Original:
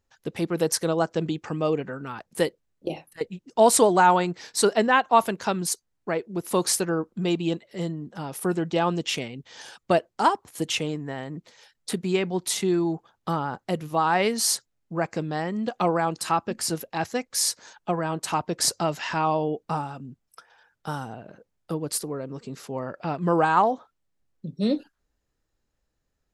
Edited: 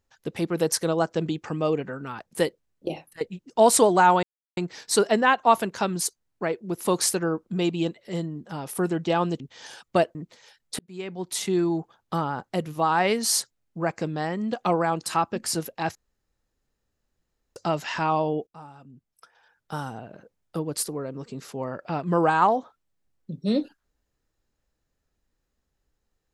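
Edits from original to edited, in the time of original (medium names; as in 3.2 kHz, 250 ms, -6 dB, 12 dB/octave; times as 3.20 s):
4.23 s: insert silence 0.34 s
9.06–9.35 s: delete
10.10–11.30 s: delete
11.94–12.73 s: fade in
17.10–18.71 s: room tone
19.62–21.05 s: fade in, from -23.5 dB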